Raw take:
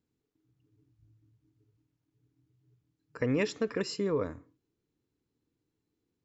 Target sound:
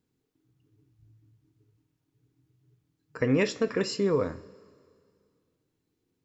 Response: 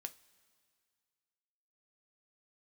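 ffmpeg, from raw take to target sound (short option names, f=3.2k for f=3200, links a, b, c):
-filter_complex "[1:a]atrim=start_sample=2205[a];[0:a][a]afir=irnorm=-1:irlink=0,volume=8.5dB"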